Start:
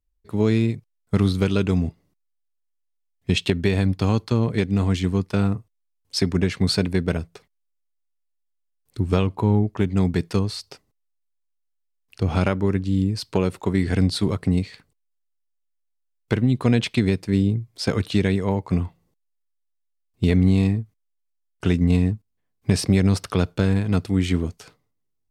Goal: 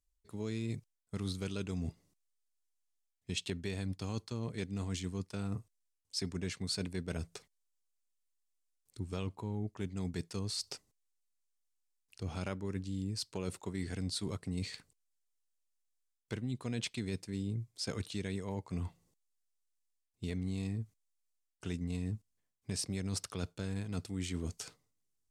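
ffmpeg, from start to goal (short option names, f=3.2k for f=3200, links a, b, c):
-af "equalizer=f=7.6k:t=o:w=1.6:g=12,areverse,acompressor=threshold=-29dB:ratio=4,areverse,volume=-7dB"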